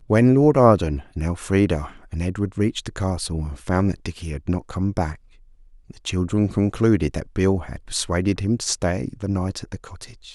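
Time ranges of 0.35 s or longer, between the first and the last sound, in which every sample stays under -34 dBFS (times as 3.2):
5.15–5.9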